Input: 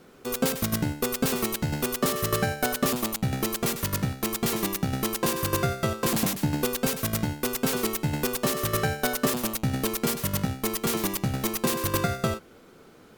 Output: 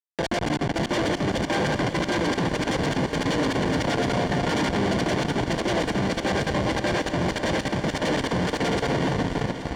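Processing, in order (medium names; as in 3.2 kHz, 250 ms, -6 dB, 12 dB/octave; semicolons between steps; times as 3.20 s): backward echo that repeats 199 ms, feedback 73%, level -7 dB; treble shelf 7.6 kHz +10 dB; compression 2.5:1, threshold -26 dBFS, peak gain reduction 7 dB; Schmitt trigger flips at -25 dBFS; distance through air 190 m; comb of notches 960 Hz; multi-head delay 373 ms, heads all three, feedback 59%, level -16 dB; speed mistake 33 rpm record played at 45 rpm; trim +7 dB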